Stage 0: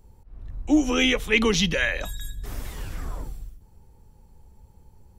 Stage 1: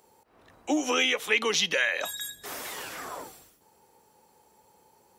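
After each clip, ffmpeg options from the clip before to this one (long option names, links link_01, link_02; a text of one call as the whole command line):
ffmpeg -i in.wav -af "highpass=490,acompressor=threshold=-30dB:ratio=3,volume=6dB" out.wav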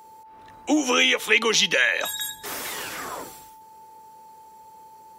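ffmpeg -i in.wav -af "equalizer=frequency=700:width=1.5:gain=-3.5,aeval=exprs='val(0)+0.00282*sin(2*PI*880*n/s)':channel_layout=same,volume=6dB" out.wav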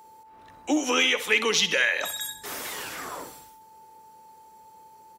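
ffmpeg -i in.wav -filter_complex "[0:a]asplit=2[link_01][link_02];[link_02]volume=11dB,asoftclip=hard,volume=-11dB,volume=-4.5dB[link_03];[link_01][link_03]amix=inputs=2:normalize=0,aecho=1:1:64|128|192|256:0.2|0.0878|0.0386|0.017,volume=-7dB" out.wav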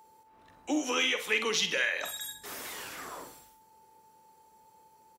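ffmpeg -i in.wav -filter_complex "[0:a]asplit=2[link_01][link_02];[link_02]adelay=46,volume=-10dB[link_03];[link_01][link_03]amix=inputs=2:normalize=0,volume=-6.5dB" out.wav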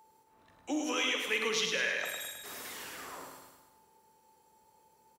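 ffmpeg -i in.wav -af "aecho=1:1:105|210|315|420|525|630|735:0.531|0.287|0.155|0.0836|0.0451|0.0244|0.0132,volume=-4dB" out.wav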